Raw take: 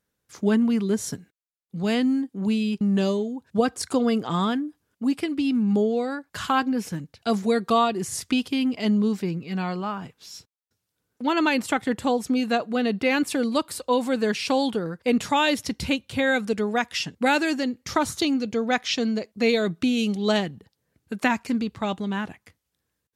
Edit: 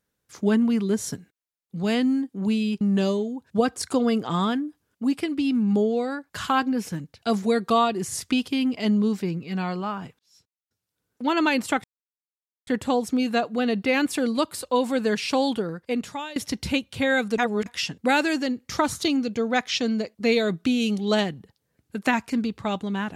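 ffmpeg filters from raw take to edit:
-filter_complex "[0:a]asplit=6[a][b][c][d][e][f];[a]atrim=end=10.19,asetpts=PTS-STARTPTS,afade=t=out:st=10.186:d=0.004:c=hsin[g];[b]atrim=start=10.19:end=11.84,asetpts=PTS-STARTPTS,afade=t=in:d=1.06,afade=t=out:st=1.646:d=0.004:c=hsin,apad=pad_dur=0.83[h];[c]atrim=start=11.84:end=15.53,asetpts=PTS-STARTPTS,afade=t=in:d=0.004:c=hsin,afade=t=out:st=2.91:d=0.78:silence=0.0841395[i];[d]atrim=start=15.53:end=16.552,asetpts=PTS-STARTPTS,afade=t=in:d=0.004:c=hsin:silence=0.0841395[j];[e]atrim=start=16.548:end=16.832,asetpts=PTS-STARTPTS,areverse[k];[f]atrim=start=16.828[l];[g][h][i][j]concat=n=4:v=0:a=1[m];[m][k]acrossfade=d=0.004:c1=hsin:c2=hsin[n];[n][l]acrossfade=d=0.004:c1=hsin:c2=hsin"

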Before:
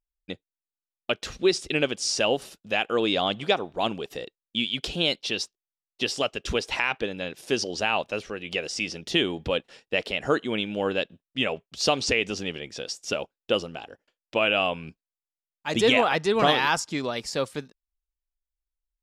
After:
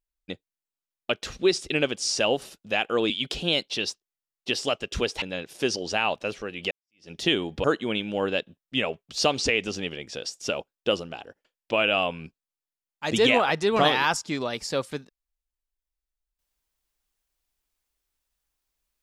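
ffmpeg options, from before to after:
-filter_complex "[0:a]asplit=5[a][b][c][d][e];[a]atrim=end=3.102[f];[b]atrim=start=4.628:end=6.752[g];[c]atrim=start=7.098:end=8.59,asetpts=PTS-STARTPTS,afade=t=out:st=1.488:d=0.004:c=hsin[h];[d]atrim=start=8.59:end=9.522,asetpts=PTS-STARTPTS,afade=t=in:d=0.4:c=exp[i];[e]atrim=start=10.268[j];[f][g]acrossfade=d=0.004:c1=hsin:c2=hsin[k];[h][i]concat=n=2:v=0:a=1[l];[k][l]acrossfade=d=0.004:c1=hsin:c2=hsin[m];[m][j]acrossfade=d=0.004:c1=hsin:c2=hsin"

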